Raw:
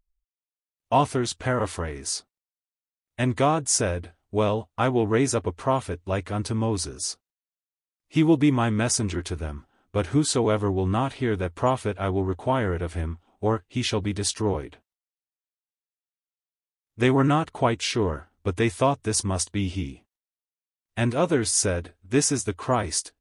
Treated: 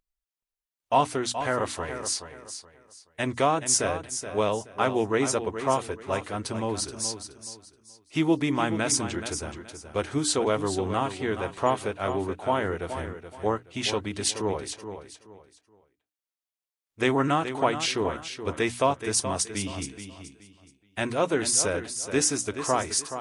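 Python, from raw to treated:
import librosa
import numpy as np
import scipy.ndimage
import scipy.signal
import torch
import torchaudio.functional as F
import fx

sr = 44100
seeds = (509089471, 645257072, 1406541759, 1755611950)

y = fx.low_shelf(x, sr, hz=220.0, db=-11.0)
y = fx.hum_notches(y, sr, base_hz=60, count=5)
y = fx.echo_feedback(y, sr, ms=425, feedback_pct=27, wet_db=-10)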